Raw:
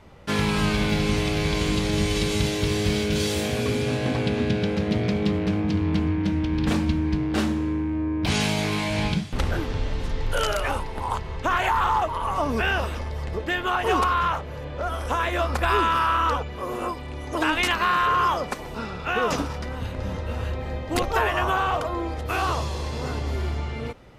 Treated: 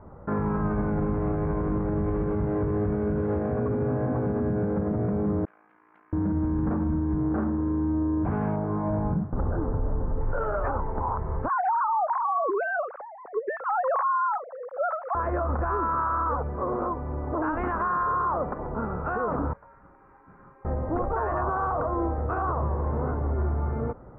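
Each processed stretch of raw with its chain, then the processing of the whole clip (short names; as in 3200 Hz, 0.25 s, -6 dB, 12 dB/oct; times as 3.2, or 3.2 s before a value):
5.45–6.13 Chebyshev high-pass 3000 Hz + AM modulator 57 Hz, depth 60%
8.56–10.21 CVSD 64 kbps + LPF 1300 Hz
11.48–15.15 sine-wave speech + compressor, threshold -22 dBFS
19.53–20.65 differentiator + inverted band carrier 2900 Hz
whole clip: steep low-pass 1400 Hz 36 dB/oct; limiter -22 dBFS; gain +3 dB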